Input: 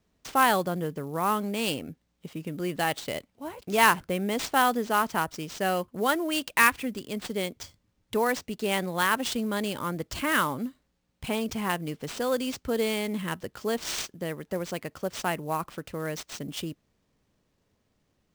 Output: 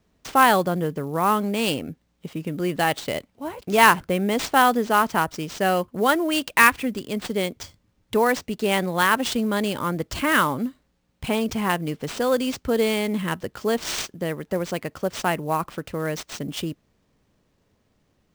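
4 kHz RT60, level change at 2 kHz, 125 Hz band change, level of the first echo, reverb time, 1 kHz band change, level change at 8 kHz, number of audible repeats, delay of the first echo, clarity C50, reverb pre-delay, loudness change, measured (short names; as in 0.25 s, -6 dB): none, +5.0 dB, +6.0 dB, none, none, +5.5 dB, +3.5 dB, none, none, none, none, +5.5 dB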